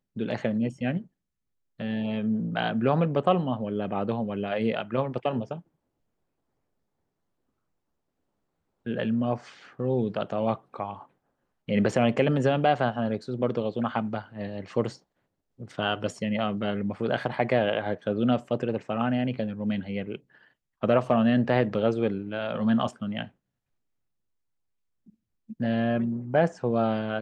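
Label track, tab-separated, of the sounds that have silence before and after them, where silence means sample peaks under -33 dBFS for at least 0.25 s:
1.800000	5.580000	sound
8.860000	9.370000	sound
9.790000	11.010000	sound
11.690000	14.900000	sound
15.620000	20.160000	sound
20.830000	23.240000	sound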